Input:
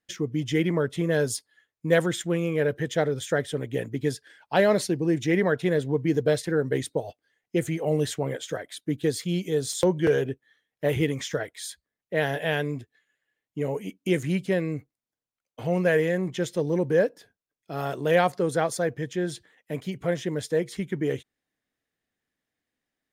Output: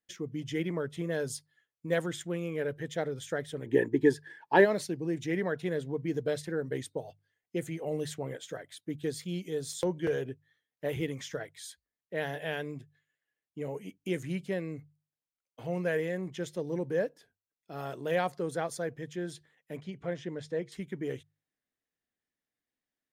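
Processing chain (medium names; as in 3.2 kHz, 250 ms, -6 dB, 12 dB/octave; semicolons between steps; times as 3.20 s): hum notches 50/100/150 Hz; wow and flutter 25 cents; 3.65–4.64 s: small resonant body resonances 360/900/1700 Hz, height 18 dB -> 15 dB, ringing for 20 ms; 19.77–20.72 s: distance through air 84 m; trim -8.5 dB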